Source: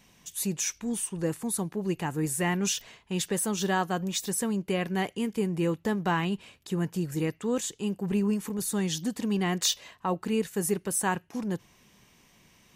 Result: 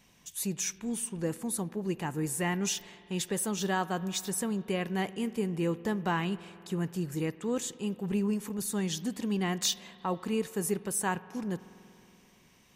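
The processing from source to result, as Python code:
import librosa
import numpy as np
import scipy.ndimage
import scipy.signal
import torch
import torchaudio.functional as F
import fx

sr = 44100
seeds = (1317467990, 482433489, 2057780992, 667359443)

y = fx.rev_spring(x, sr, rt60_s=3.0, pass_ms=(47,), chirp_ms=70, drr_db=17.0)
y = y * 10.0 ** (-3.0 / 20.0)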